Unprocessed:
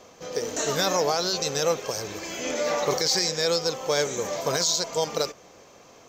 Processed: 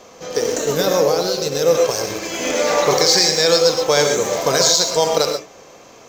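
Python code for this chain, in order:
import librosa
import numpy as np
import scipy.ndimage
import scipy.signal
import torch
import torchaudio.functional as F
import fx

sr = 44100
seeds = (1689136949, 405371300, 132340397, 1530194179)

p1 = fx.peak_eq(x, sr, hz=93.0, db=-3.5, octaves=1.4)
p2 = fx.rev_gated(p1, sr, seeds[0], gate_ms=150, shape='rising', drr_db=4.5)
p3 = fx.spec_box(p2, sr, start_s=0.57, length_s=1.18, low_hz=590.0, high_hz=11000.0, gain_db=-7)
p4 = np.where(np.abs(p3) >= 10.0 ** (-27.0 / 20.0), p3, 0.0)
p5 = p3 + (p4 * librosa.db_to_amplitude(-12.0))
y = p5 * librosa.db_to_amplitude(6.5)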